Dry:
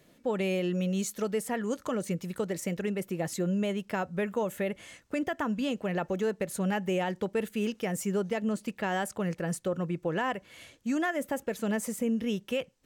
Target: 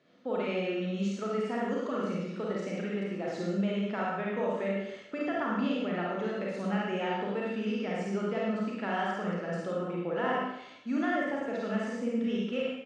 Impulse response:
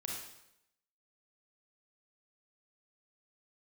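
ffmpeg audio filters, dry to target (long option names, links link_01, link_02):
-filter_complex "[0:a]highpass=190,equalizer=frequency=260:width_type=q:width=4:gain=6,equalizer=frequency=660:width_type=q:width=4:gain=3,equalizer=frequency=1300:width_type=q:width=4:gain=7,lowpass=frequency=5000:width=0.5412,lowpass=frequency=5000:width=1.3066,aecho=1:1:51|70:0.531|0.531[link_01];[1:a]atrim=start_sample=2205[link_02];[link_01][link_02]afir=irnorm=-1:irlink=0,volume=-3.5dB"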